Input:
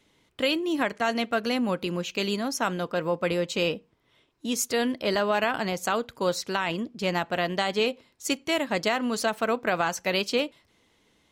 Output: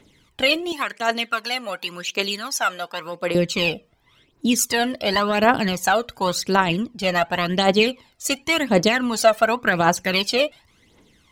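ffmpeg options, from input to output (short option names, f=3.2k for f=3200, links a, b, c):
-filter_complex "[0:a]asettb=1/sr,asplit=3[a][b][c];[a]atrim=end=0.724[d];[b]atrim=start=0.72:end=3.35,asetpts=PTS-STARTPTS,afade=t=in:d=0.004:c=qsin,afade=t=out:st=2.626:d=0.004:c=qsin,highpass=f=1.2k:p=1[e];[c]atrim=start=3.346[f];[d][e]acrossfade=d=0.004:c1=hsin:c2=qsin[g];[g][f]acrossfade=d=0.004:c1=qsin:c2=hsin,aphaser=in_gain=1:out_gain=1:delay=1.7:decay=0.66:speed=0.91:type=triangular,volume=5dB"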